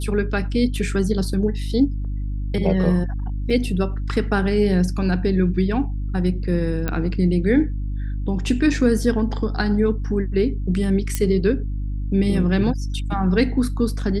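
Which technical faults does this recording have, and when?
mains hum 50 Hz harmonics 6 −25 dBFS
0:03.50: drop-out 4.8 ms
0:06.88: click −11 dBFS
0:11.15: click −7 dBFS

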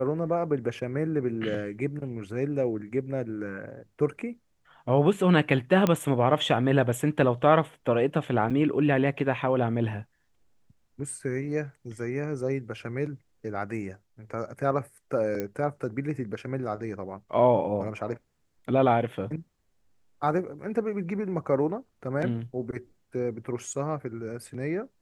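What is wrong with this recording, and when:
0:05.87: click −11 dBFS
0:08.50–0:08.51: drop-out 6.3 ms
0:15.40: click −17 dBFS

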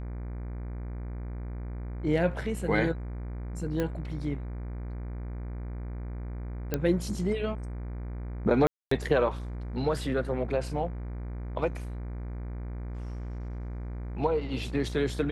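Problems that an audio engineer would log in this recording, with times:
mains buzz 60 Hz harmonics 40 −36 dBFS
0:03.80: click −17 dBFS
0:06.74: click −13 dBFS
0:08.67–0:08.91: drop-out 244 ms

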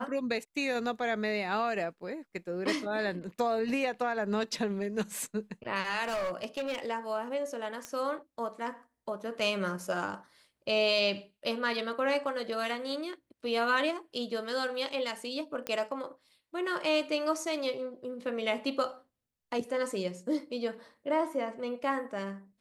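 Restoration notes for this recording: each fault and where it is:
0:06.03–0:06.80: clipping −29.5 dBFS
0:07.85: click −22 dBFS
0:15.67: click −18 dBFS

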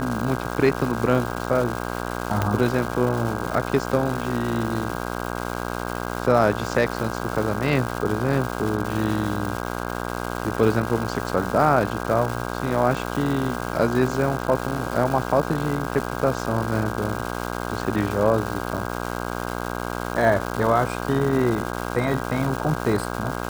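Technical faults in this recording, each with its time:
mains buzz 60 Hz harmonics 27 −29 dBFS
surface crackle 520 per second −27 dBFS
0:02.42: click −8 dBFS

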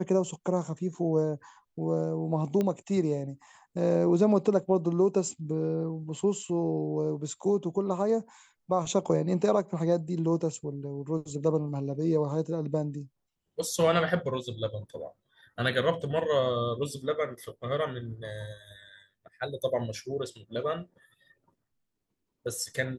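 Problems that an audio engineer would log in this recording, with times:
0:02.61: click −17 dBFS

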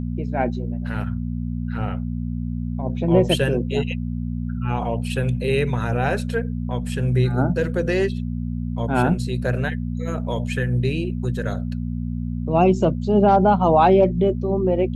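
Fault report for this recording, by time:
mains hum 60 Hz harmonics 4 −26 dBFS

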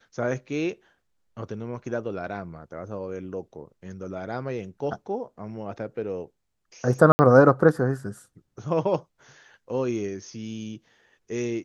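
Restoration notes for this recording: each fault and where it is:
0:07.12–0:07.19: drop-out 70 ms

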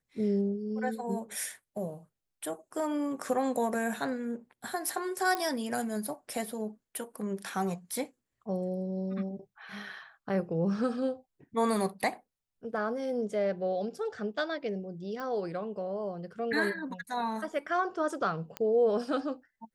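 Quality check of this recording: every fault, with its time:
0:05.35: click −17 dBFS
0:15.20: click −27 dBFS
0:18.57: click −20 dBFS

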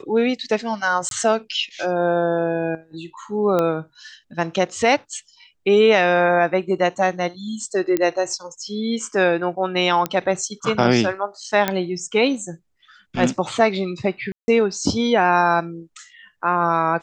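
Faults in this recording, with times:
0:01.09–0:01.11: drop-out 22 ms
0:03.59: click −9 dBFS
0:07.97: click −8 dBFS
0:10.06: click −8 dBFS
0:11.68: click −5 dBFS
0:14.32–0:14.48: drop-out 160 ms

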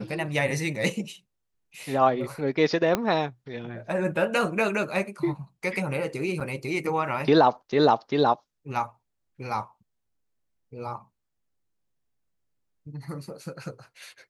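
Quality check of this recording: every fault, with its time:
0:02.95: click −9 dBFS
0:06.40–0:06.41: drop-out 6.8 ms

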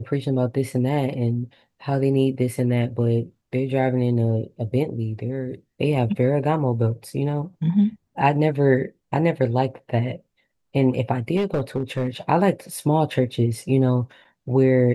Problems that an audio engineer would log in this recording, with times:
0:11.36–0:12.07: clipping −17 dBFS

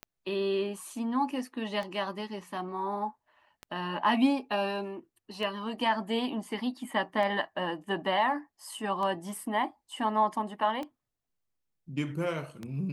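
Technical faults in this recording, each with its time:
scratch tick 33 1/3 rpm −24 dBFS

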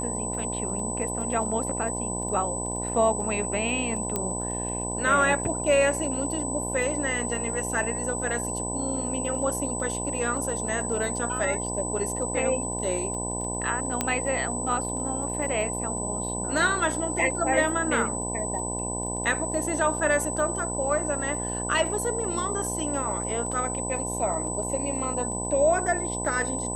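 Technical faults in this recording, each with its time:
mains buzz 60 Hz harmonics 17 −33 dBFS
surface crackle 13 per second −35 dBFS
whistle 8,000 Hz −31 dBFS
0:04.16: click −12 dBFS
0:14.01: click −9 dBFS

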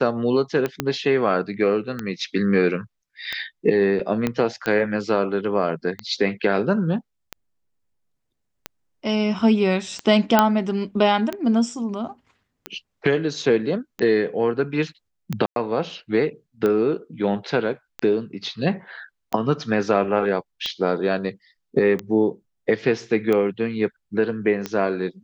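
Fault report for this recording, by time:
scratch tick 45 rpm −12 dBFS
0:00.80: click −7 dBFS
0:04.27: click −9 dBFS
0:10.39: click −1 dBFS
0:15.46–0:15.56: drop-out 102 ms

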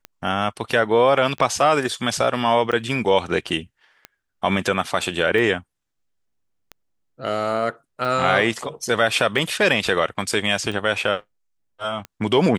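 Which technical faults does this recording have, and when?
scratch tick 45 rpm −18 dBFS

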